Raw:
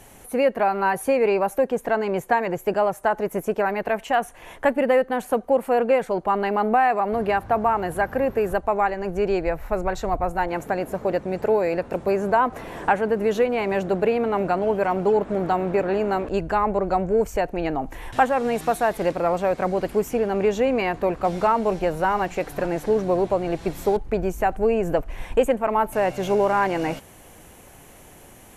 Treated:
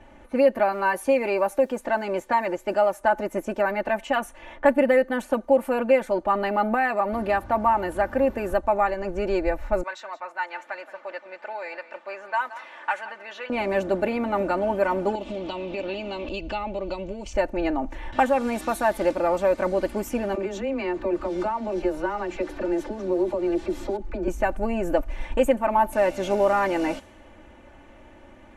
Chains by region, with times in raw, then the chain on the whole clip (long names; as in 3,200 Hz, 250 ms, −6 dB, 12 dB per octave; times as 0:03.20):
0:00.72–0:03.00: low-shelf EQ 250 Hz −5 dB + bit-depth reduction 10 bits, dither none
0:09.83–0:13.50: high-pass filter 1,200 Hz + single-tap delay 174 ms −15 dB
0:15.15–0:17.33: high shelf with overshoot 2,200 Hz +9.5 dB, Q 3 + downward compressor 3 to 1, threshold −27 dBFS + low-pass filter 7,200 Hz
0:20.35–0:24.28: downward compressor 3 to 1, threshold −26 dBFS + parametric band 360 Hz +10 dB 0.23 octaves + all-pass dispersion lows, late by 40 ms, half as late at 430 Hz
whole clip: low-pass that shuts in the quiet parts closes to 2,200 Hz, open at −18.5 dBFS; comb filter 3.4 ms, depth 80%; level −2.5 dB